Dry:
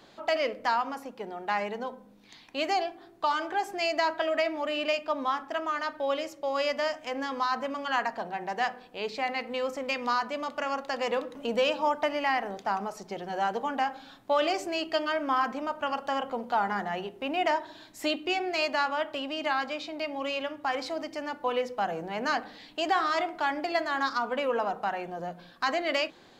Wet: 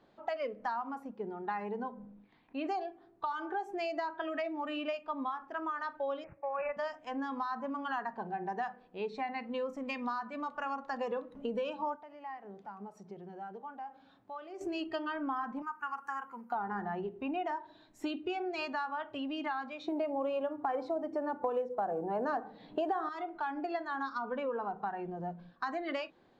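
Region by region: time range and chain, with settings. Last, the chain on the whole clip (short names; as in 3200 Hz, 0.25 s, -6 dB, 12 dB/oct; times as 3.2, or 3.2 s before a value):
1.92–2.67 LPF 2800 Hz + sustainer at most 48 dB/s
6.24–6.77 HPF 460 Hz + careless resampling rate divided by 8×, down none, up filtered
11.96–14.61 HPF 57 Hz + compressor 2:1, threshold -48 dBFS
15.62–16.52 HPF 510 Hz 6 dB/oct + high shelf 3900 Hz +10 dB + fixed phaser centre 1500 Hz, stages 4
19.88–23.09 bell 540 Hz +13.5 dB 3 oct + short-mantissa float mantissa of 4-bit
whole clip: LPF 1100 Hz 6 dB/oct; spectral noise reduction 10 dB; compressor 5:1, threshold -35 dBFS; gain +2 dB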